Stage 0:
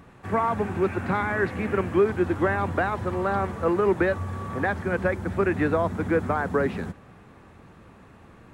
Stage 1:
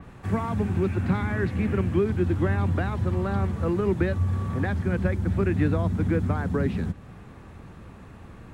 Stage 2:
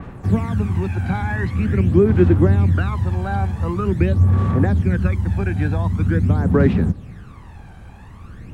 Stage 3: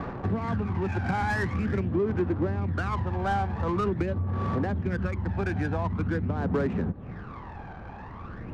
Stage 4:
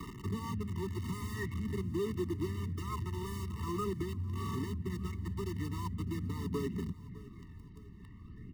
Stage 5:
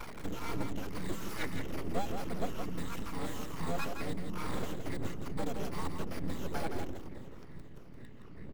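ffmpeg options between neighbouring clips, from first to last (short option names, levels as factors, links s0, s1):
-filter_complex "[0:a]lowshelf=f=110:g=7.5,acrossover=split=280|3000[s0][s1][s2];[s1]acompressor=threshold=0.00158:ratio=1.5[s3];[s0][s3][s2]amix=inputs=3:normalize=0,adynamicequalizer=threshold=0.00158:dfrequency=4500:dqfactor=0.7:tfrequency=4500:tqfactor=0.7:attack=5:release=100:ratio=0.375:range=3:mode=cutabove:tftype=highshelf,volume=1.5"
-af "aphaser=in_gain=1:out_gain=1:delay=1.3:decay=0.63:speed=0.45:type=sinusoidal,volume=1.26"
-filter_complex "[0:a]acompressor=threshold=0.0794:ratio=12,asplit=2[s0][s1];[s1]highpass=f=720:p=1,volume=5.62,asoftclip=type=tanh:threshold=0.178[s2];[s0][s2]amix=inputs=2:normalize=0,lowpass=f=1200:p=1,volume=0.501,adynamicsmooth=sensitivity=7:basefreq=1600"
-filter_complex "[0:a]acrossover=split=170|350|1700[s0][s1][s2][s3];[s2]acrusher=bits=5:mix=0:aa=0.000001[s4];[s0][s1][s4][s3]amix=inputs=4:normalize=0,aecho=1:1:607|1214|1821|2428:0.112|0.0561|0.0281|0.014,afftfilt=real='re*eq(mod(floor(b*sr/1024/440),2),0)':imag='im*eq(mod(floor(b*sr/1024/440),2),0)':win_size=1024:overlap=0.75,volume=0.376"
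-af "afftfilt=real='re*pow(10,15/40*sin(2*PI*(0.91*log(max(b,1)*sr/1024/100)/log(2)-(-2.3)*(pts-256)/sr)))':imag='im*pow(10,15/40*sin(2*PI*(0.91*log(max(b,1)*sr/1024/100)/log(2)-(-2.3)*(pts-256)/sr)))':win_size=1024:overlap=0.75,aeval=exprs='abs(val(0))':c=same,aecho=1:1:168:0.473"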